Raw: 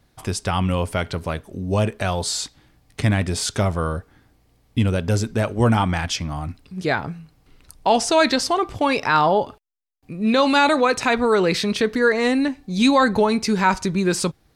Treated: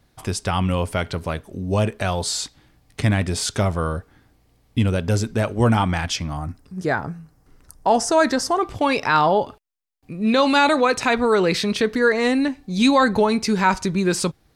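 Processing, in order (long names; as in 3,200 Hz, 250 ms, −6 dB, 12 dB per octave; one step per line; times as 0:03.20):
0:06.37–0:08.61: flat-topped bell 3,100 Hz −9.5 dB 1.2 octaves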